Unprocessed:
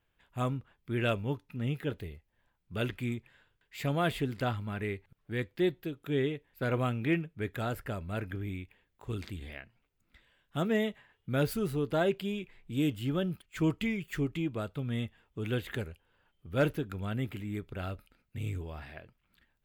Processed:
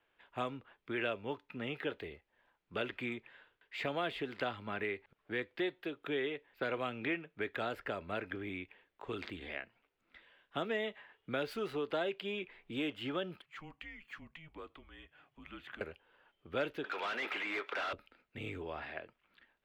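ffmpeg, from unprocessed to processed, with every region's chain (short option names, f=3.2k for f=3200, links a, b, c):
-filter_complex "[0:a]asettb=1/sr,asplit=3[a][b][c];[a]atrim=end=13.444[d];[b]atrim=start=13.44:end=15.81,asetpts=PTS-STARTPTS,afade=t=in:d=0.004:c=qsin,afade=t=out:st=2.366:d=0.004:c=qsin,acompressor=threshold=-57dB:ratio=2:attack=3.2:release=140:knee=1:detection=peak,afreqshift=-170[e];[c]atrim=start=15.806[f];[d][e]acrossfade=d=0.004:c1=hsin:c2=qsin[g];[g][f]acrossfade=d=0.004:c1=qsin:c2=hsin,asettb=1/sr,asplit=3[h][i][j];[h]atrim=end=16.844[k];[i]atrim=start=16.84:end=17.93,asetpts=PTS-STARTPTS,afade=t=in:d=0.004:c=qsin,afade=t=out:st=1.086:d=0.004:c=qsin,highpass=1.1k,tiltshelf=f=1.5k:g=6.5,asplit=2[l][m];[m]highpass=f=720:p=1,volume=30dB,asoftclip=type=tanh:threshold=-30.5dB[n];[l][n]amix=inputs=2:normalize=0,lowpass=f=6k:p=1,volume=-6dB[o];[j]atrim=start=17.926[p];[k][o]acrossfade=d=0.004:c1=hsin:c2=qsin[q];[q][p]acrossfade=d=0.004:c1=qsin:c2=hsin,acrossover=split=280 4100:gain=0.126 1 0.0794[r][s][t];[r][s][t]amix=inputs=3:normalize=0,acrossover=split=540|2500[u][v][w];[u]acompressor=threshold=-45dB:ratio=4[x];[v]acompressor=threshold=-44dB:ratio=4[y];[w]acompressor=threshold=-49dB:ratio=4[z];[x][y][z]amix=inputs=3:normalize=0,volume=5dB"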